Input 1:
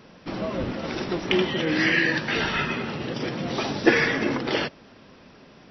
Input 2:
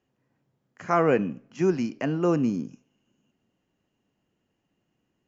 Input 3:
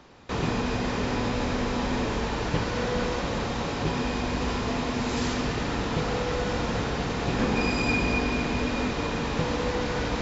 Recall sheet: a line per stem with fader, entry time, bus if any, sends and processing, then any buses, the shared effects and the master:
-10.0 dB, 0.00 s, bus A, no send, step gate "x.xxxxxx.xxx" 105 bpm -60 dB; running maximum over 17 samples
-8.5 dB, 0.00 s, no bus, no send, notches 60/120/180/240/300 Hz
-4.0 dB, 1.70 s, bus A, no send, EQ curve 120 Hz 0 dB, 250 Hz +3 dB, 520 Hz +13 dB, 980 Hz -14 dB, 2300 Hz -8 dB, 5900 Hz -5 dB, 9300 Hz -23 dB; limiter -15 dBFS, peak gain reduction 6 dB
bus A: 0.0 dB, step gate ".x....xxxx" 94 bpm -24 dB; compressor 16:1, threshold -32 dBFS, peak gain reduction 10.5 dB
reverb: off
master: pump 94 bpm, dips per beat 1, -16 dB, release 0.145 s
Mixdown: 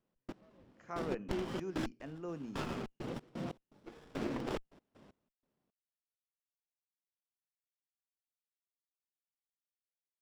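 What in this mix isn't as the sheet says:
stem 2 -8.5 dB -> -19.5 dB; stem 3: muted; master: missing pump 94 bpm, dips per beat 1, -16 dB, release 0.145 s

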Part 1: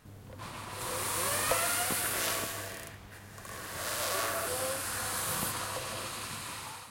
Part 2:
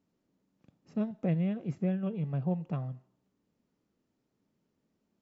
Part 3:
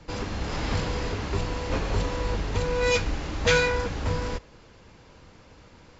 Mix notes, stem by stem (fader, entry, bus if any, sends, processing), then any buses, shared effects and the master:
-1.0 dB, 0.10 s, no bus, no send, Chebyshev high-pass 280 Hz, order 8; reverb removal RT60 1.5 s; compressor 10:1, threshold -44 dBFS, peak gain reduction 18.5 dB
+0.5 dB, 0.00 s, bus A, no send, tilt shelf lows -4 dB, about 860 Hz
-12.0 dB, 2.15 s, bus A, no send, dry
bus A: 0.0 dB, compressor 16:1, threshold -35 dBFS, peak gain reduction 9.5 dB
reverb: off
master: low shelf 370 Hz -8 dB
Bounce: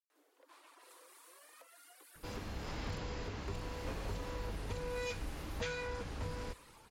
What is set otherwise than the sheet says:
stem 1 -1.0 dB -> -13.0 dB; stem 2: muted; master: missing low shelf 370 Hz -8 dB

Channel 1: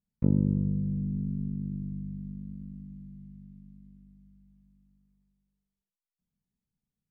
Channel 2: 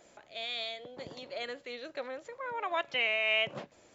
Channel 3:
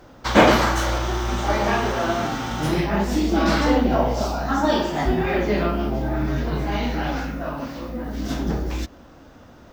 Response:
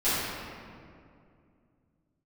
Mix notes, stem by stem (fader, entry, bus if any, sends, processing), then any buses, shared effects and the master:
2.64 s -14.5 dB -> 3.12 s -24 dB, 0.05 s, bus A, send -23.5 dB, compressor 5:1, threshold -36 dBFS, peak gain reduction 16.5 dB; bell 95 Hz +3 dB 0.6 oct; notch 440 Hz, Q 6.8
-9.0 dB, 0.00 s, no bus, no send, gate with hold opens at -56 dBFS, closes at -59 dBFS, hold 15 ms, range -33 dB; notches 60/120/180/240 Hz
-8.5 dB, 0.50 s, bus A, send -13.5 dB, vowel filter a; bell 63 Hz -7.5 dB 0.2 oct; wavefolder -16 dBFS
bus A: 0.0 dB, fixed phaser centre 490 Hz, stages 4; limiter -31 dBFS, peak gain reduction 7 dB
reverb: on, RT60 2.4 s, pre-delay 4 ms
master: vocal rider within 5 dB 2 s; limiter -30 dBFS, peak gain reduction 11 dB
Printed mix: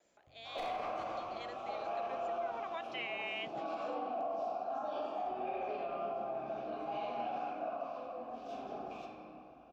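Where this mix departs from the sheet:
stem 1 -14.5 dB -> -22.5 dB; stem 3: entry 0.50 s -> 0.20 s

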